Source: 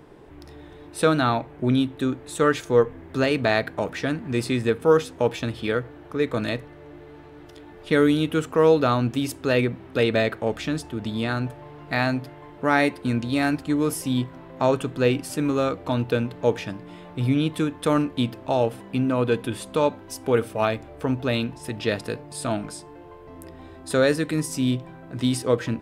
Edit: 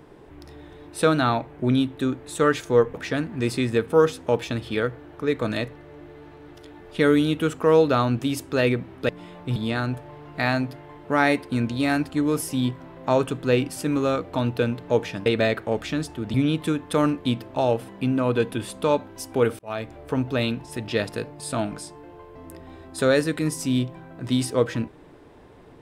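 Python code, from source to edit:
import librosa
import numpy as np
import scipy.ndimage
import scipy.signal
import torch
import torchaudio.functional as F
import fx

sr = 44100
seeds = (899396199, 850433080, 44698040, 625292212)

y = fx.edit(x, sr, fx.cut(start_s=2.94, length_s=0.92),
    fx.swap(start_s=10.01, length_s=1.08, other_s=16.79, other_length_s=0.47),
    fx.fade_in_span(start_s=20.51, length_s=0.37), tone=tone)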